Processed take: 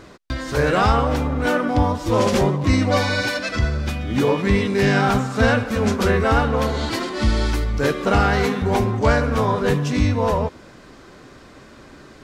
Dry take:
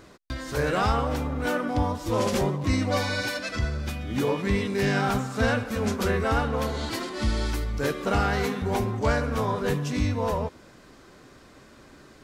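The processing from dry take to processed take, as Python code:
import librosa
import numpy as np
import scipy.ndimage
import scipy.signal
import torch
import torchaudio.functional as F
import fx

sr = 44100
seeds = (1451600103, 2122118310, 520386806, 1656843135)

y = fx.high_shelf(x, sr, hz=9600.0, db=-9.5)
y = y * librosa.db_to_amplitude(7.0)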